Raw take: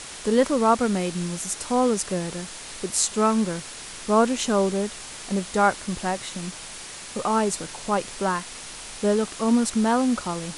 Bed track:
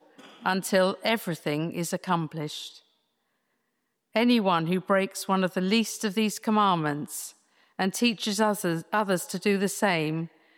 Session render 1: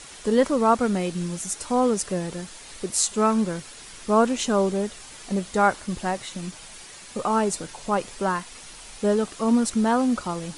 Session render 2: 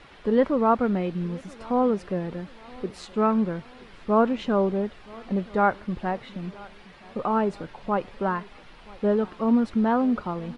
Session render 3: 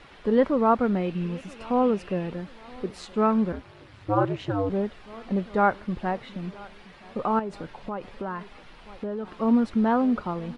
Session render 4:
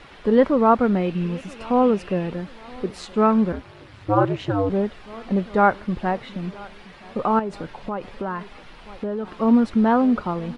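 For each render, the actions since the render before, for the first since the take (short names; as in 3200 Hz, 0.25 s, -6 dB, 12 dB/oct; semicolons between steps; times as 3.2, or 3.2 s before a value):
denoiser 7 dB, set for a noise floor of -39 dBFS
air absorption 380 m; feedback echo 0.975 s, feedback 47%, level -23 dB
1.08–2.32 bell 2700 Hz +10 dB 0.29 oct; 3.52–4.7 ring modulator 100 Hz; 7.39–9.36 compressor, threshold -28 dBFS
gain +4.5 dB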